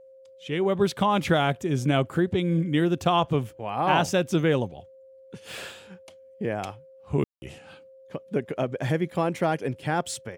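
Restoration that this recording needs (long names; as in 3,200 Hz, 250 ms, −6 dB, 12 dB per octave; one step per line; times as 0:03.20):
notch filter 530 Hz, Q 30
ambience match 0:07.24–0:07.42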